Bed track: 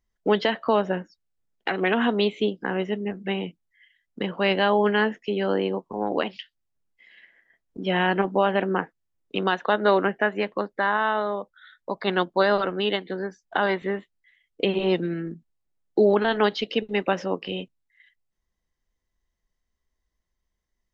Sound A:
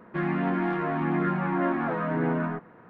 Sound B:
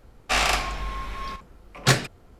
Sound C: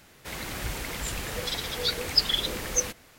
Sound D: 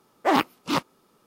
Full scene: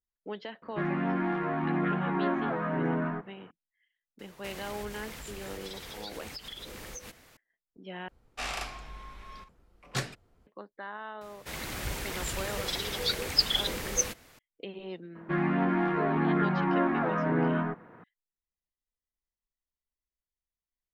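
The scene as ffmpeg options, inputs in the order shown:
-filter_complex "[1:a]asplit=2[s0][s1];[3:a]asplit=2[s2][s3];[0:a]volume=0.126[s4];[s2]acompressor=threshold=0.0141:ratio=6:attack=3.2:release=140:knee=1:detection=peak[s5];[s4]asplit=2[s6][s7];[s6]atrim=end=8.084[s8];[2:a]atrim=end=2.39,asetpts=PTS-STARTPTS,volume=0.211[s9];[s7]atrim=start=10.466[s10];[s0]atrim=end=2.89,asetpts=PTS-STARTPTS,volume=0.708,afade=t=in:d=0.004:c=hsin,afade=t=out:st=2.886:d=0.004:c=hsin,adelay=620[s11];[s5]atrim=end=3.18,asetpts=PTS-STARTPTS,volume=0.708,afade=t=in:d=0.004:c=hsin,afade=t=out:st=3.176:d=0.004:c=hsin,adelay=4190[s12];[s3]atrim=end=3.18,asetpts=PTS-STARTPTS,volume=0.794,afade=t=in:d=0.004:c=hsin,afade=t=out:st=3.176:d=0.004:c=hsin,adelay=11210[s13];[s1]atrim=end=2.89,asetpts=PTS-STARTPTS,volume=0.944,afade=t=in:d=0.004:c=hsin,afade=t=out:st=2.886:d=0.004:c=hsin,adelay=15150[s14];[s8][s9]acrossfade=d=0.004:c1=hsin:c2=hsin[s15];[s15][s10]acrossfade=d=0.004:c1=hsin:c2=hsin[s16];[s16][s11][s12][s13][s14]amix=inputs=5:normalize=0"

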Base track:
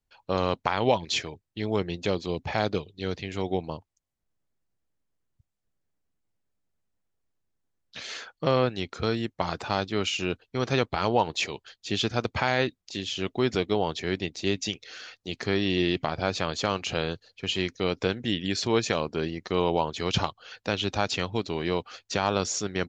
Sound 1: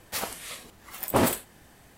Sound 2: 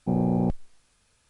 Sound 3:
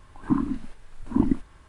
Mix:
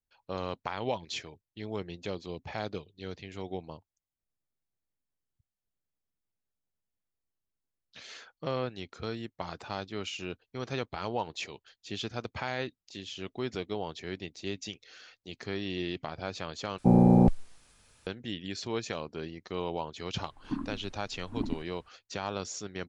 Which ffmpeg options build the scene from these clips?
-filter_complex "[0:a]volume=0.335[s0];[2:a]acontrast=73[s1];[s0]asplit=2[s2][s3];[s2]atrim=end=16.784[s4];[s1]atrim=end=1.29,asetpts=PTS-STARTPTS,volume=0.75[s5];[s3]atrim=start=18.066[s6];[3:a]atrim=end=1.68,asetpts=PTS-STARTPTS,volume=0.266,afade=t=in:d=0.004:c=hsin,afade=t=out:st=1.676:d=0.004:c=hsin,adelay=20210[s7];[s4][s5]acrossfade=d=0.004:c1=hsin:c2=hsin[s8];[s8][s6]acrossfade=d=0.004:c1=hsin:c2=hsin[s9];[s9][s7]amix=inputs=2:normalize=0"

